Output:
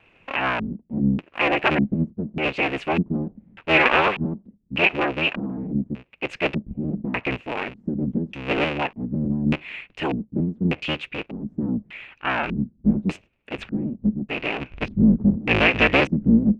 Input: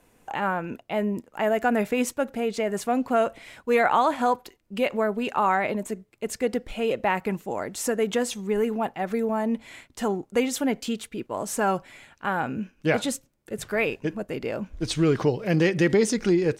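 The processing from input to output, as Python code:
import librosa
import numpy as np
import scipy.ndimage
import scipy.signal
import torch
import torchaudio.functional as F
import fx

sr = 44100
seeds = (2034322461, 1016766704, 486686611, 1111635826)

y = fx.cycle_switch(x, sr, every=3, mode='inverted')
y = fx.vibrato(y, sr, rate_hz=4.4, depth_cents=39.0)
y = fx.filter_lfo_lowpass(y, sr, shape='square', hz=0.84, low_hz=210.0, high_hz=2600.0, q=6.5)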